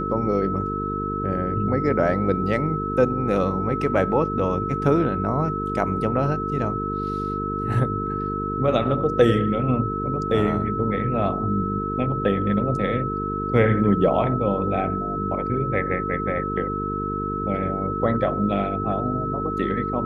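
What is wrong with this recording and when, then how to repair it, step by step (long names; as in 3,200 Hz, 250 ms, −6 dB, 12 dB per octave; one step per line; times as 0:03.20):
mains buzz 50 Hz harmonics 9 −29 dBFS
whistle 1,300 Hz −27 dBFS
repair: hum removal 50 Hz, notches 9
notch filter 1,300 Hz, Q 30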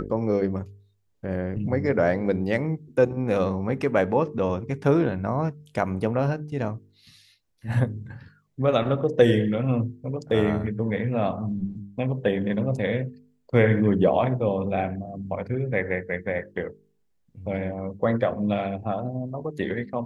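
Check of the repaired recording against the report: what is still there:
none of them is left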